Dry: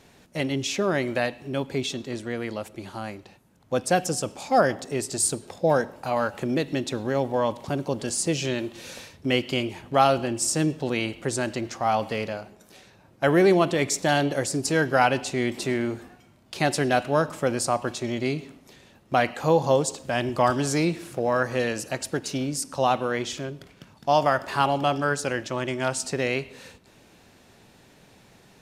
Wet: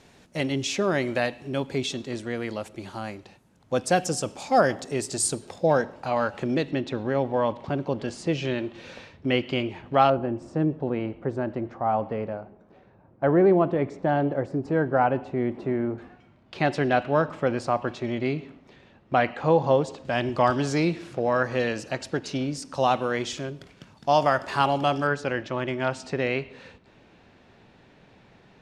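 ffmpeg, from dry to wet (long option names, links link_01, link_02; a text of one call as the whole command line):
ffmpeg -i in.wav -af "asetnsamples=nb_out_samples=441:pad=0,asendcmd='5.67 lowpass f 5300;6.71 lowpass f 3000;10.1 lowpass f 1100;15.98 lowpass f 2900;20.05 lowpass f 4800;22.74 lowpass f 8500;25.07 lowpass f 3200',lowpass=9600" out.wav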